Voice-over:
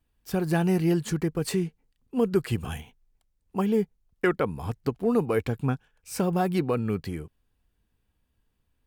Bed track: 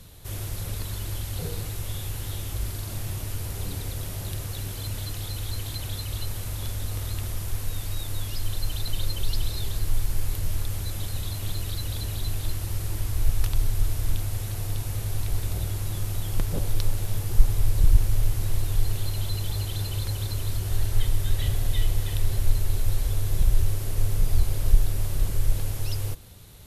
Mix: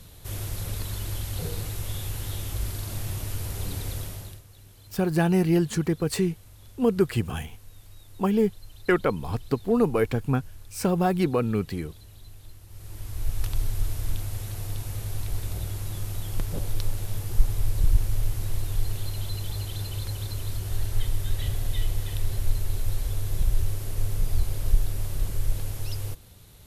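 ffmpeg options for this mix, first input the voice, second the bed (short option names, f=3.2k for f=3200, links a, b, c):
-filter_complex "[0:a]adelay=4650,volume=2dB[a];[1:a]volume=15dB,afade=t=out:st=3.95:d=0.47:silence=0.125893,afade=t=in:st=12.68:d=0.84:silence=0.177828[b];[a][b]amix=inputs=2:normalize=0"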